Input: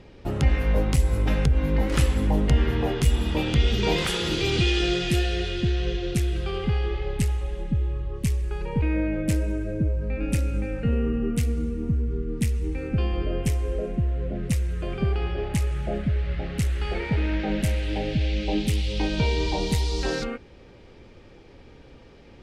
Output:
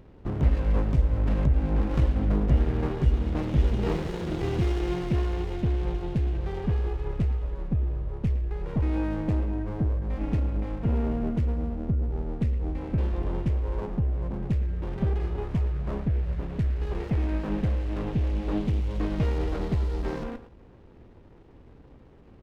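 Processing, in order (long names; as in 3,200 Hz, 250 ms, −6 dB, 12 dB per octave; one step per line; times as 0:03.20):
head-to-tape spacing loss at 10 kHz 31 dB
far-end echo of a speakerphone 110 ms, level −12 dB
windowed peak hold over 33 samples
level −1 dB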